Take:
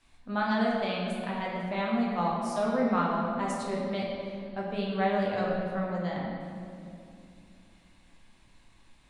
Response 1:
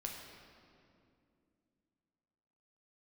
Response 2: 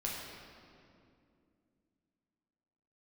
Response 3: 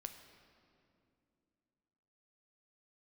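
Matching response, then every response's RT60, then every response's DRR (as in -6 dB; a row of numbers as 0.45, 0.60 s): 2; 2.5, 2.5, 2.6 s; 0.0, -4.0, 6.5 dB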